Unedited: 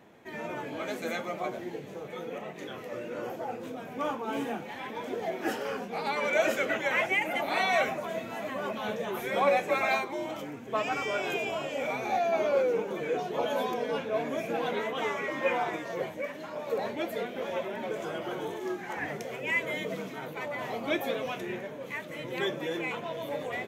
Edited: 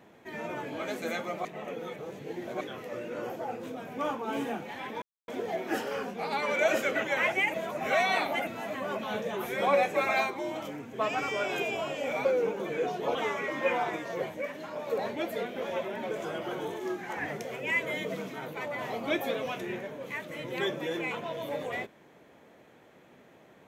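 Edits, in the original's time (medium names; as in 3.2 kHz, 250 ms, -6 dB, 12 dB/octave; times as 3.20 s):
1.45–2.61 s: reverse
5.02 s: insert silence 0.26 s
7.28–8.21 s: reverse
11.99–12.56 s: delete
13.46–14.95 s: delete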